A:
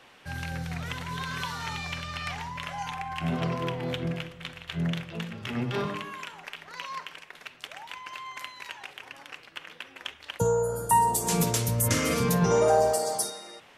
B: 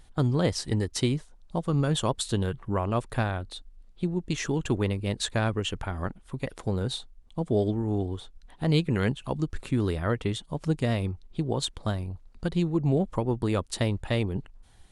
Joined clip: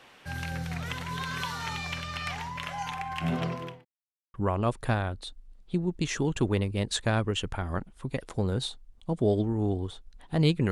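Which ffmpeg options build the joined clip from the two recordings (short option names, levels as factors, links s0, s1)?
-filter_complex "[0:a]apad=whole_dur=10.71,atrim=end=10.71,asplit=2[s0][s1];[s0]atrim=end=3.85,asetpts=PTS-STARTPTS,afade=t=out:st=3.35:d=0.5[s2];[s1]atrim=start=3.85:end=4.34,asetpts=PTS-STARTPTS,volume=0[s3];[1:a]atrim=start=2.63:end=9,asetpts=PTS-STARTPTS,afade=t=in:d=0.004:c=hsin[s4];[s2][s3][s4]concat=n=3:v=0:a=1"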